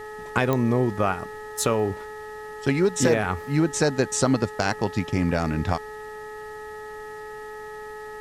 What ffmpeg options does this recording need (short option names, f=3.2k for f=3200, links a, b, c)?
-af "adeclick=t=4,bandreject=f=426.7:t=h:w=4,bandreject=f=853.4:t=h:w=4,bandreject=f=1.2801k:t=h:w=4,bandreject=f=1.7068k:t=h:w=4,bandreject=f=1.9k:w=30,agate=range=-21dB:threshold=-30dB"